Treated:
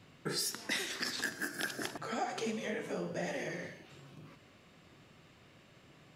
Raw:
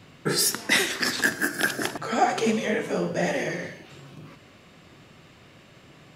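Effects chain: dynamic bell 4.8 kHz, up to +4 dB, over -36 dBFS, Q 1; compression 2.5:1, threshold -26 dBFS, peak gain reduction 8 dB; trim -9 dB

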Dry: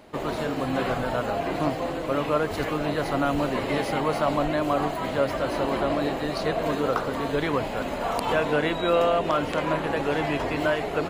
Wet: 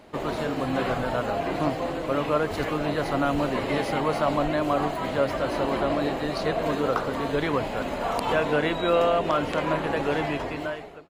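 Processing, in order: fade out at the end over 0.95 s; treble shelf 9.5 kHz -4 dB

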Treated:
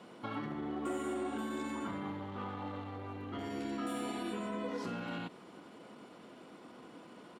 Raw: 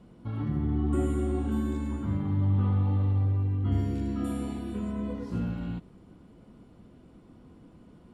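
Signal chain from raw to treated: tracing distortion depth 0.026 ms; in parallel at -10 dB: wavefolder -24 dBFS; on the sum: bass shelf 130 Hz -11 dB; compression, threshold -35 dBFS, peak gain reduction 10.5 dB; frequency weighting A; tempo 1.1×; trim +7.5 dB

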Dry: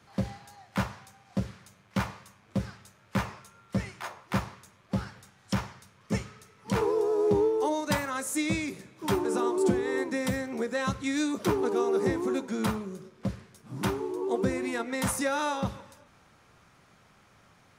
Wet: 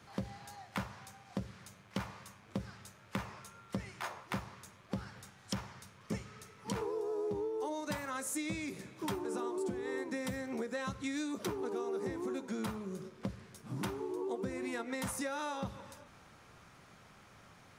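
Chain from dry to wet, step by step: compression 5:1, threshold -37 dBFS, peak gain reduction 16 dB; trim +1 dB

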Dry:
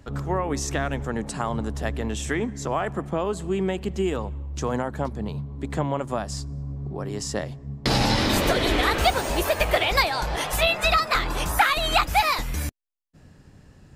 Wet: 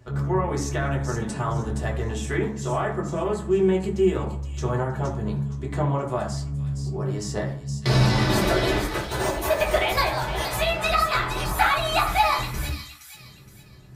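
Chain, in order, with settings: 8.79–9.50 s: compressor with a negative ratio -27 dBFS, ratio -0.5; feedback echo behind a high-pass 468 ms, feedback 33%, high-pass 3.4 kHz, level -5.5 dB; reverberation RT60 0.55 s, pre-delay 4 ms, DRR -3.5 dB; trim -5.5 dB

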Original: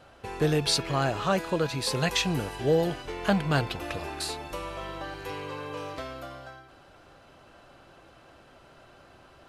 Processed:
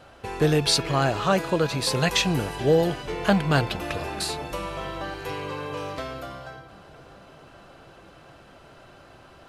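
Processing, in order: on a send: filtered feedback delay 429 ms, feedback 80%, low-pass 1.7 kHz, level -21 dB; on the sum: trim +4 dB

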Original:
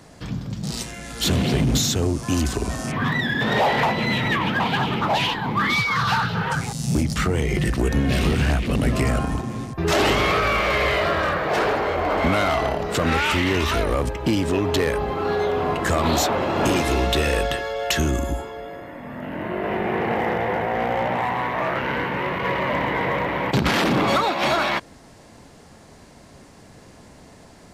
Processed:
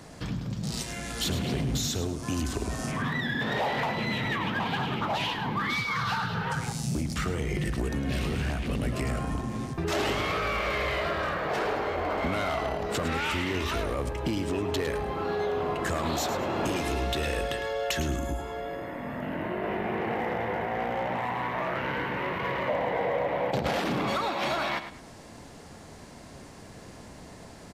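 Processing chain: 22.68–23.80 s: high-order bell 610 Hz +10 dB 1 oct; compression 2.5:1, threshold -31 dBFS, peak gain reduction 12 dB; feedback delay 106 ms, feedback 29%, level -10.5 dB

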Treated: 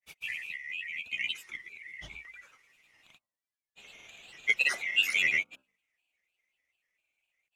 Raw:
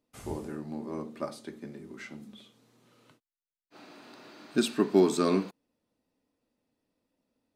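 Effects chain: split-band scrambler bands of 2 kHz; de-hum 56.01 Hz, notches 25; vibrato 2.6 Hz 33 cents; granulator, pitch spread up and down by 3 st

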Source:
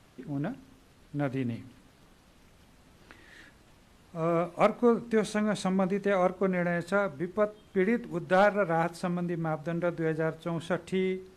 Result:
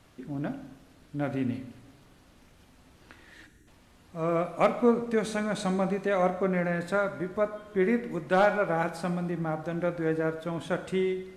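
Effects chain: spectral selection erased 3.47–3.67 s, 460–5500 Hz; two-slope reverb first 0.89 s, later 3.1 s, from -18 dB, DRR 8 dB

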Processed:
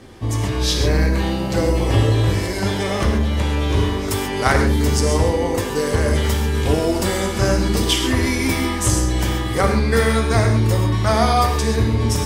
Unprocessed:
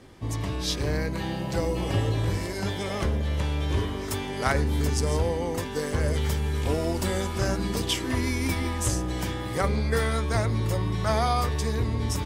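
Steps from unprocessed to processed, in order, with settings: gated-style reverb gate 160 ms flat, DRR 3 dB; trim +7 dB

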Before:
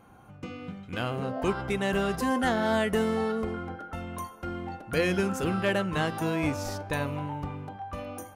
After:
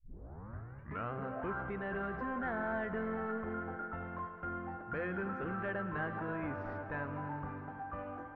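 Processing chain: tape start-up on the opening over 1.11 s; in parallel at +2.5 dB: peak limiter -26 dBFS, peak gain reduction 10.5 dB; on the sum: saturation -17.5 dBFS, distortion -17 dB; four-pole ladder low-pass 1.8 kHz, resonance 50%; multi-head delay 109 ms, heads all three, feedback 73%, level -19 dB; trim -5 dB

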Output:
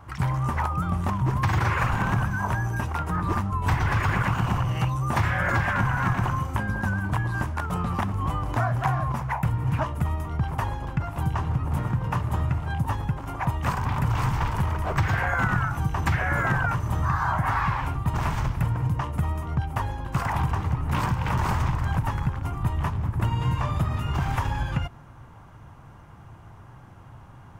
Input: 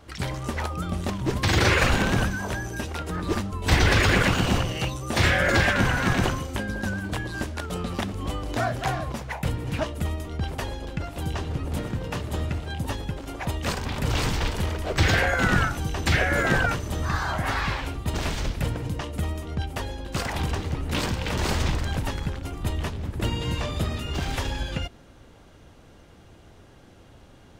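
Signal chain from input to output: ten-band graphic EQ 125 Hz +11 dB, 250 Hz -3 dB, 500 Hz -7 dB, 1 kHz +12 dB, 4 kHz -10 dB, 8 kHz -4 dB; compression, threshold -20 dBFS, peak gain reduction 10.5 dB

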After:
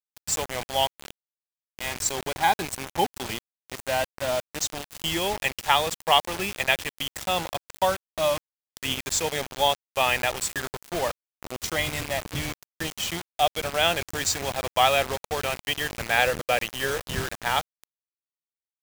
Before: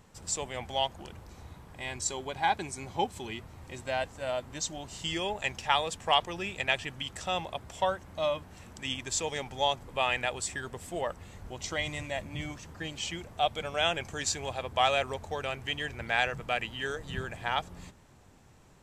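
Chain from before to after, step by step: 16.17–17.18 s: peaking EQ 530 Hz +11.5 dB 0.21 oct; bit crusher 6-bit; trim +5.5 dB

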